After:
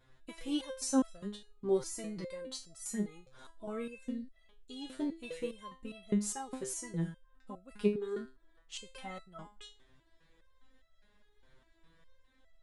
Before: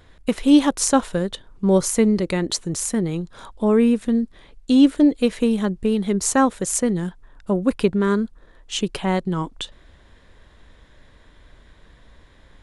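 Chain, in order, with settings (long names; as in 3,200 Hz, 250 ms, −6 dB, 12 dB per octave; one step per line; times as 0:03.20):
step-sequenced resonator 4.9 Hz 130–660 Hz
level −3 dB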